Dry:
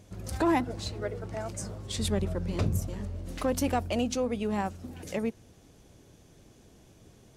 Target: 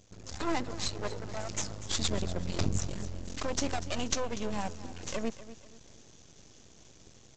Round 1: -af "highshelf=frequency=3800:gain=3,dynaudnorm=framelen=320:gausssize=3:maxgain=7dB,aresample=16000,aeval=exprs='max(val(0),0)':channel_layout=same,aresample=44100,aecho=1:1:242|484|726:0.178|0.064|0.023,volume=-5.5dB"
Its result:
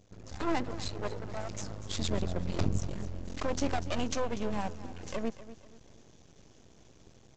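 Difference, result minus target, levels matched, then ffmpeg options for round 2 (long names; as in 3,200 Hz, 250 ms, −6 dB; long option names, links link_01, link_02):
8,000 Hz band −6.5 dB
-af "highshelf=frequency=3800:gain=15,dynaudnorm=framelen=320:gausssize=3:maxgain=7dB,aresample=16000,aeval=exprs='max(val(0),0)':channel_layout=same,aresample=44100,aecho=1:1:242|484|726:0.178|0.064|0.023,volume=-5.5dB"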